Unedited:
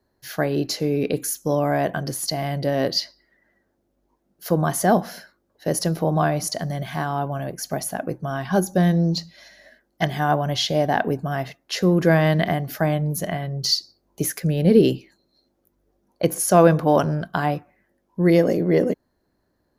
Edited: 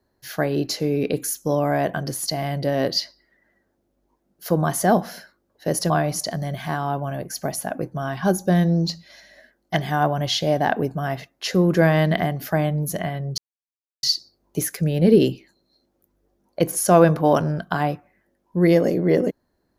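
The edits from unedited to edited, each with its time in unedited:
0:05.90–0:06.18: remove
0:13.66: splice in silence 0.65 s

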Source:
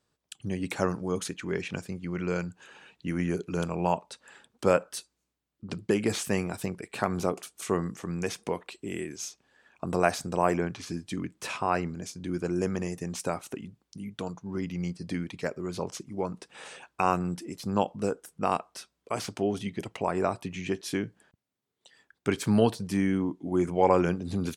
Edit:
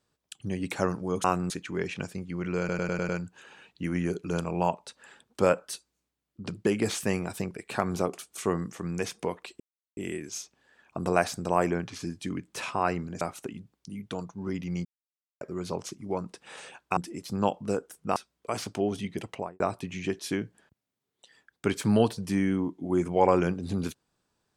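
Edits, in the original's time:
0:02.33: stutter 0.10 s, 6 plays
0:08.84: splice in silence 0.37 s
0:12.08–0:13.29: remove
0:14.93–0:15.49: silence
0:17.05–0:17.31: move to 0:01.24
0:18.50–0:18.78: remove
0:19.91–0:20.22: fade out and dull

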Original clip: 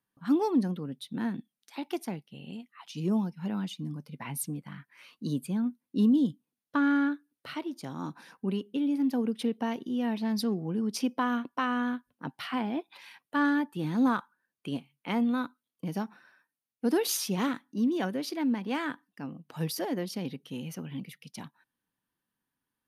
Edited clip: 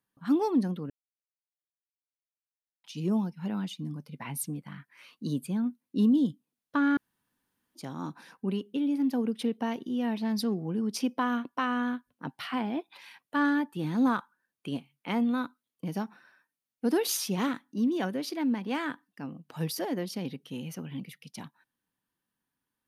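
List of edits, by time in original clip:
0:00.90–0:02.84: silence
0:06.97–0:07.75: fill with room tone

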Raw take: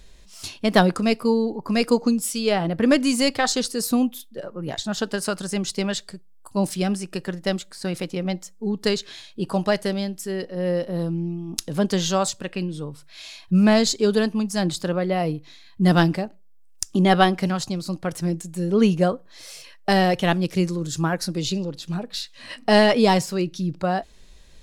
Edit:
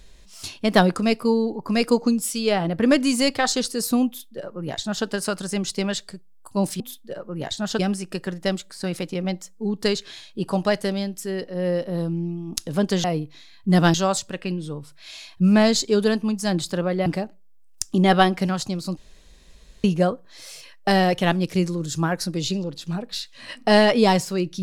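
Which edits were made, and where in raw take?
0:04.07–0:05.06: duplicate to 0:06.80
0:15.17–0:16.07: move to 0:12.05
0:17.98–0:18.85: fill with room tone

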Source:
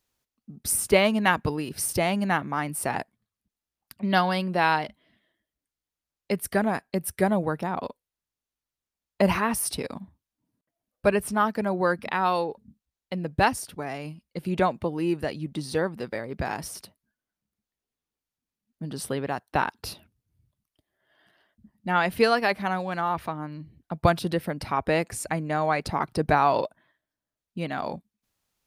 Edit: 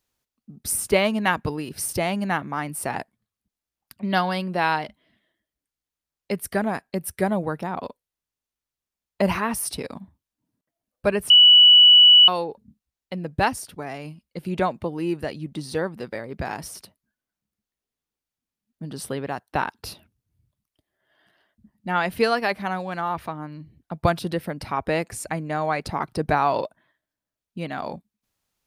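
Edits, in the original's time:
0:11.30–0:12.28: beep over 2,950 Hz −8 dBFS

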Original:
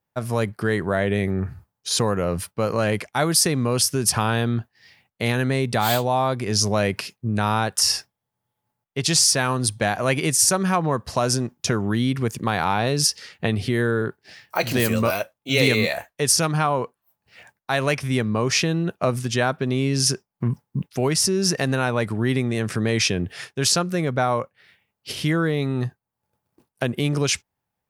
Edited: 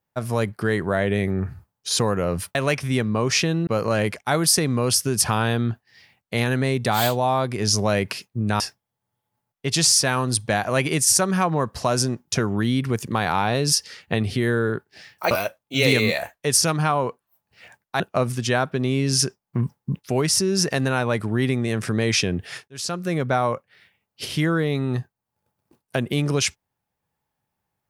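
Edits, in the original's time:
0:07.48–0:07.92: remove
0:14.63–0:15.06: remove
0:17.75–0:18.87: move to 0:02.55
0:23.55–0:24.03: fade in

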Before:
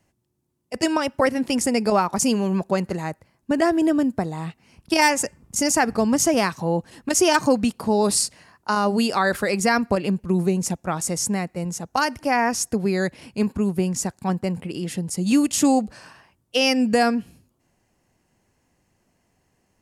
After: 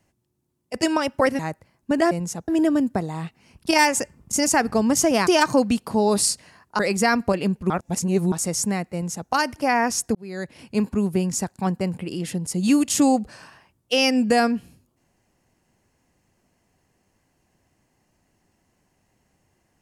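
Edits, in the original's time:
0:01.39–0:02.99: remove
0:06.50–0:07.20: remove
0:08.72–0:09.42: remove
0:10.33–0:10.95: reverse
0:11.56–0:11.93: duplicate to 0:03.71
0:12.78–0:13.38: fade in

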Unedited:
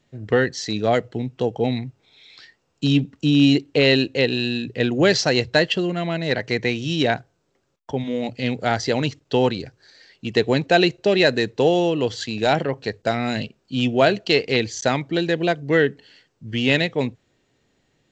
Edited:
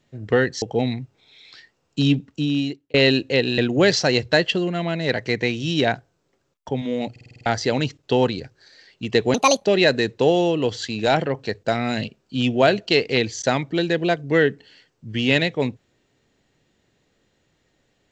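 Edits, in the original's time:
0:00.62–0:01.47: remove
0:02.94–0:03.79: fade out
0:04.43–0:04.80: remove
0:08.33: stutter in place 0.05 s, 7 plays
0:10.56–0:11.03: play speed 155%

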